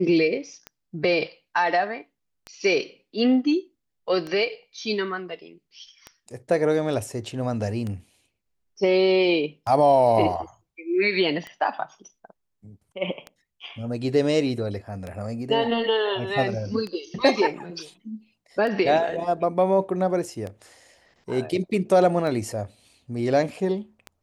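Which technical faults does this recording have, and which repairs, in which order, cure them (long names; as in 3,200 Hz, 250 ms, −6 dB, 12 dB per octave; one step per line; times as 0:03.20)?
scratch tick 33 1/3 rpm −20 dBFS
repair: click removal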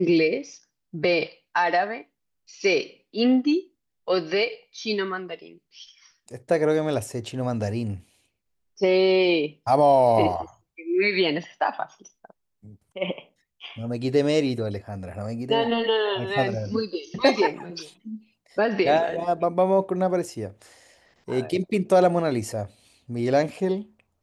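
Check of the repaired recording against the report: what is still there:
none of them is left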